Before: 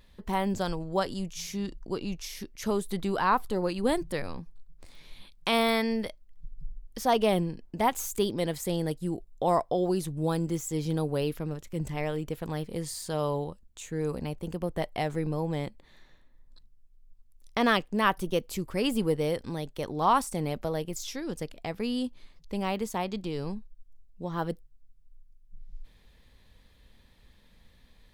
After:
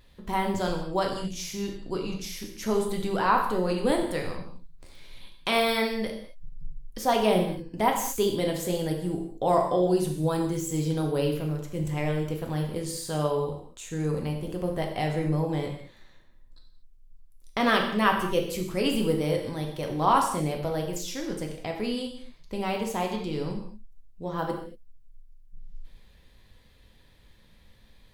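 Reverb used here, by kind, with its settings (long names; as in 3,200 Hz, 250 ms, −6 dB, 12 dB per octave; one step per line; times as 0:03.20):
reverb whose tail is shaped and stops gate 260 ms falling, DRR 1 dB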